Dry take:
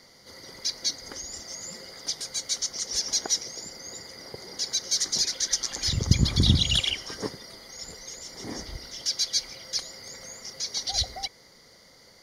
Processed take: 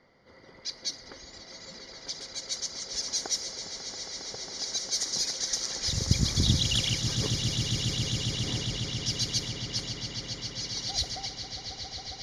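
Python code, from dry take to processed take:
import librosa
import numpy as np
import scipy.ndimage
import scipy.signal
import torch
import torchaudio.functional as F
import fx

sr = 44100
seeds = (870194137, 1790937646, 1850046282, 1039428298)

y = fx.echo_swell(x, sr, ms=136, loudest=8, wet_db=-11.0)
y = fx.env_lowpass(y, sr, base_hz=2000.0, full_db=-20.0)
y = y * librosa.db_to_amplitude(-4.5)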